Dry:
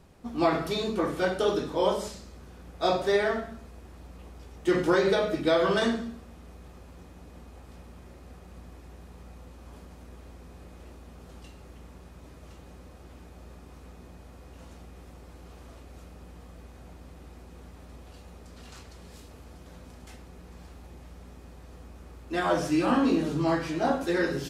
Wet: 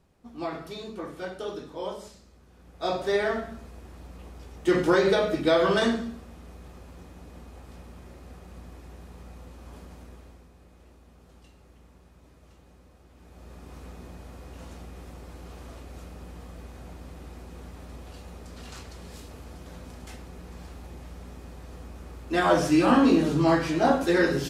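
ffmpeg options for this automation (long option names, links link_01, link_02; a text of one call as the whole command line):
ffmpeg -i in.wav -af "volume=13.5dB,afade=type=in:start_time=2.47:duration=1.11:silence=0.281838,afade=type=out:start_time=9.96:duration=0.55:silence=0.354813,afade=type=in:start_time=13.14:duration=0.64:silence=0.266073" out.wav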